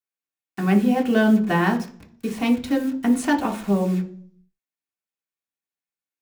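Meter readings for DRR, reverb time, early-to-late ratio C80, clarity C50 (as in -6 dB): 0.5 dB, 0.50 s, 18.0 dB, 13.5 dB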